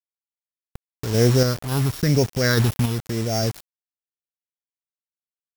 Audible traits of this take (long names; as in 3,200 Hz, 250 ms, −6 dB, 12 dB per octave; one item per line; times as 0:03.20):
a buzz of ramps at a fixed pitch in blocks of 8 samples
phaser sweep stages 6, 0.99 Hz, lowest notch 490–1,100 Hz
a quantiser's noise floor 6 bits, dither none
sample-and-hold tremolo